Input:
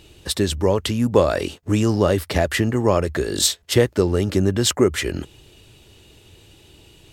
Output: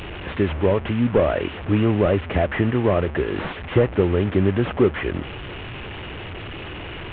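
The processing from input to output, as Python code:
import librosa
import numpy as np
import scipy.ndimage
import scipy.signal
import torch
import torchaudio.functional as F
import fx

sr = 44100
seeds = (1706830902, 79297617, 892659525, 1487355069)

y = fx.delta_mod(x, sr, bps=16000, step_db=-26.5)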